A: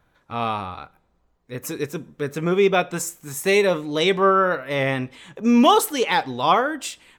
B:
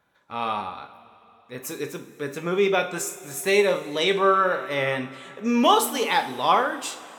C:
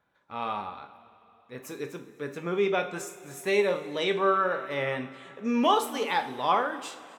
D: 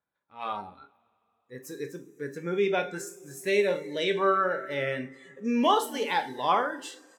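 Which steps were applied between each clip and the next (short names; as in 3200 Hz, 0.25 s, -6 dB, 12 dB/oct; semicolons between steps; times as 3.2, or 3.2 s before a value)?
HPF 290 Hz 6 dB/oct; two-slope reverb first 0.38 s, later 3.4 s, from -18 dB, DRR 5.5 dB; gain -2.5 dB
high shelf 4900 Hz -9 dB; echo 0.261 s -24 dB; gain -4.5 dB
spectral noise reduction 15 dB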